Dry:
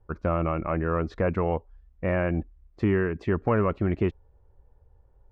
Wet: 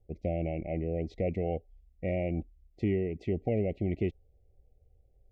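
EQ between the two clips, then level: brick-wall FIR band-stop 800–1900 Hz; -5.5 dB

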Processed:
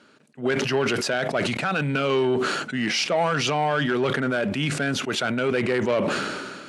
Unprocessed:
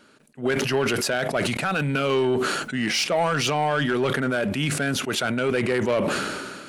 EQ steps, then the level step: HPF 93 Hz; LPF 7000 Hz 12 dB/oct; 0.0 dB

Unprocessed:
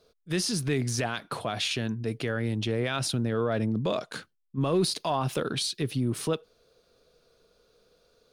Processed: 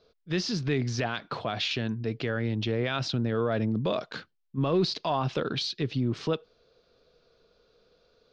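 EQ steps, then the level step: inverse Chebyshev low-pass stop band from 9500 Hz, stop band 40 dB; 0.0 dB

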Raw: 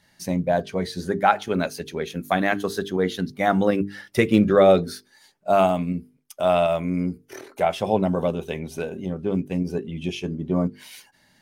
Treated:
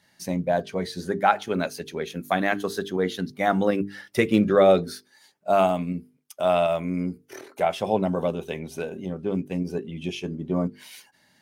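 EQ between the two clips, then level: HPF 120 Hz 6 dB/oct; -1.5 dB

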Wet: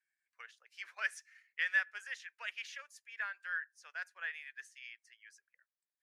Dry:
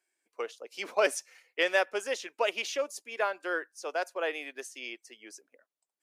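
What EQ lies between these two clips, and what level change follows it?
band-pass 1700 Hz, Q 5.3; differentiator; +12.5 dB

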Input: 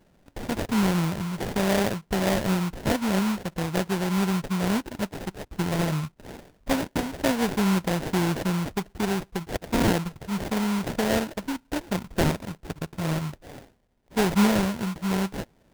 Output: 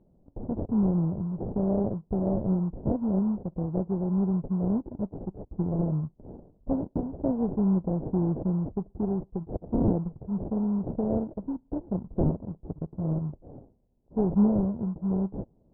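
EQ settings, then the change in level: Gaussian blur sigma 12 samples; air absorption 310 m; 0.0 dB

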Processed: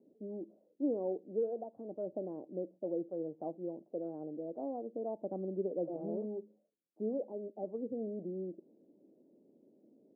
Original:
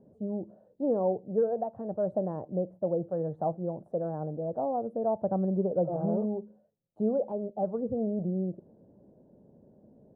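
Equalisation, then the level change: ladder band-pass 350 Hz, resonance 55%; +3.0 dB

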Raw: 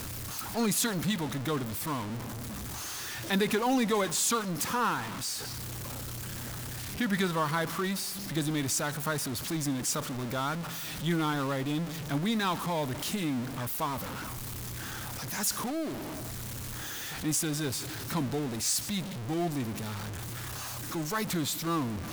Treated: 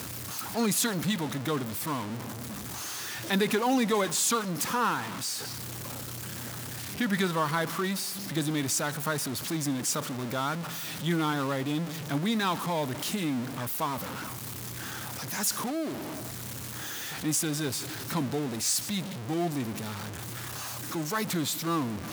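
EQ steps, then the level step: HPF 110 Hz 12 dB/oct; +1.5 dB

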